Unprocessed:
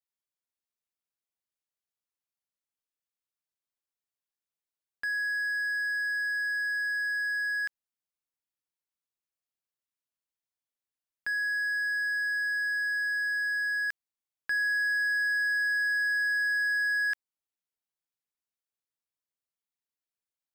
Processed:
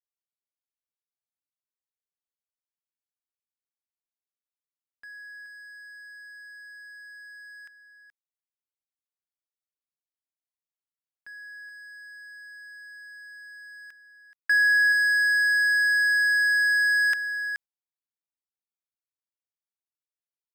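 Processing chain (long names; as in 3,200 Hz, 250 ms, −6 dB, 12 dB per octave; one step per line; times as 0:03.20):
noise gate with hold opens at −23 dBFS
on a send: single-tap delay 426 ms −10.5 dB
on the sum: level +8 dB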